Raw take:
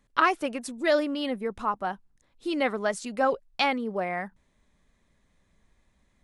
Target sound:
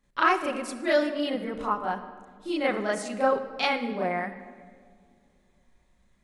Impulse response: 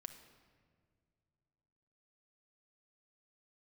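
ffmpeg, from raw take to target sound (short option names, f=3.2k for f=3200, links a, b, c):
-filter_complex "[0:a]asplit=2[a][b];[1:a]atrim=start_sample=2205,adelay=34[c];[b][c]afir=irnorm=-1:irlink=0,volume=10.5dB[d];[a][d]amix=inputs=2:normalize=0,volume=-6.5dB"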